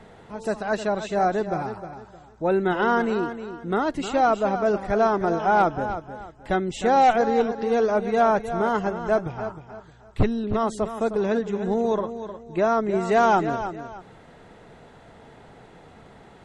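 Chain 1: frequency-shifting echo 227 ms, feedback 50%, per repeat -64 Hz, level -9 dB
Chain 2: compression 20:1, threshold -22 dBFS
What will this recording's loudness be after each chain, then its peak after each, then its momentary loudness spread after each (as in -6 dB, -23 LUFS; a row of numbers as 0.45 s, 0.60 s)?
-23.0 LUFS, -28.0 LUFS; -8.5 dBFS, -14.5 dBFS; 14 LU, 10 LU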